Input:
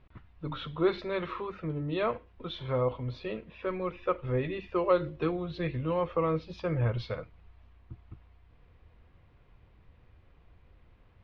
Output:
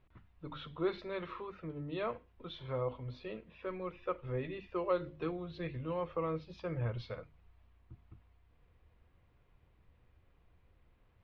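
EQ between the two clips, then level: hum notches 50/100/150/200/250 Hz; -7.5 dB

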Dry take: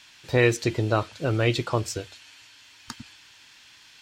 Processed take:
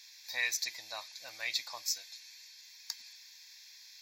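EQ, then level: high-pass 850 Hz 6 dB/octave; differentiator; static phaser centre 2 kHz, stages 8; +6.0 dB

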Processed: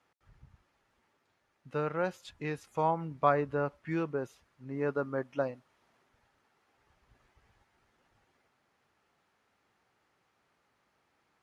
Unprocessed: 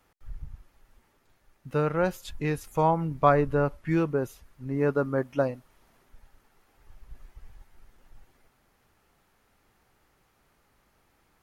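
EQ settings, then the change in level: high-pass 92 Hz 12 dB/octave; distance through air 64 m; bass shelf 370 Hz -6 dB; -4.0 dB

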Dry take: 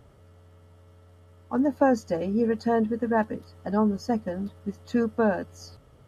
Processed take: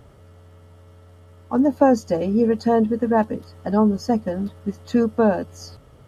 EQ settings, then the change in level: dynamic bell 1.7 kHz, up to -6 dB, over -44 dBFS, Q 1.7; +6.0 dB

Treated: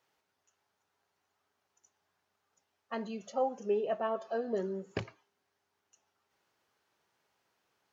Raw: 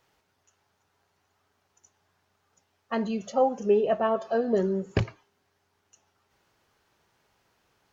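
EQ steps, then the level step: high-pass 250 Hz 6 dB/octave; -7.5 dB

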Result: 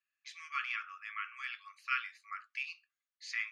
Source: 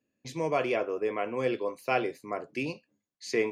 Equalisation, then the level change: brick-wall FIR high-pass 1.1 kHz; low-pass 3.8 kHz 6 dB/octave; distance through air 59 m; +1.0 dB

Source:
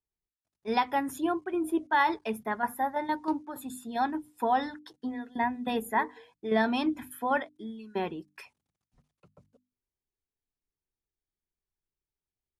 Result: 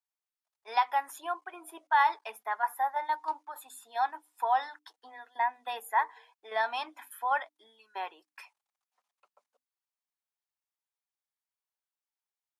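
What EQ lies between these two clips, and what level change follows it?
ladder high-pass 680 Hz, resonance 35%; +5.0 dB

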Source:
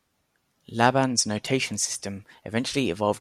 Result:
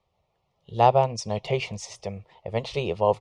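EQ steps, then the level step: low-pass 2.5 kHz 12 dB/octave; static phaser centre 650 Hz, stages 4; +4.5 dB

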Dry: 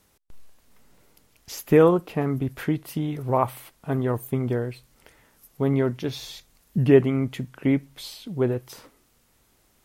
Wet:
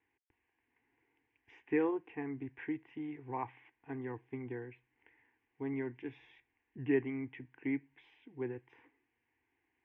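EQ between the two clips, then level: cabinet simulation 190–2300 Hz, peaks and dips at 220 Hz -8 dB, 400 Hz -5 dB, 590 Hz -6 dB, 1.1 kHz -5 dB; peaking EQ 640 Hz -8 dB 1.8 oct; static phaser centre 880 Hz, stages 8; -4.5 dB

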